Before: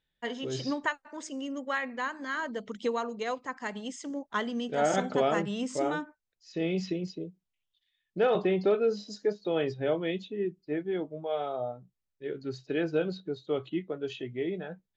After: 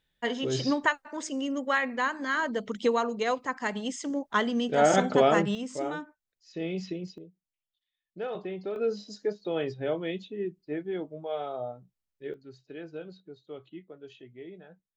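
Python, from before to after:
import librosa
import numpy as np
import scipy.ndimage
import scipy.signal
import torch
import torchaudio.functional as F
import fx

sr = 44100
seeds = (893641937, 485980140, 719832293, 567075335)

y = fx.gain(x, sr, db=fx.steps((0.0, 5.0), (5.55, -3.0), (7.18, -9.5), (8.76, -1.5), (12.34, -12.0)))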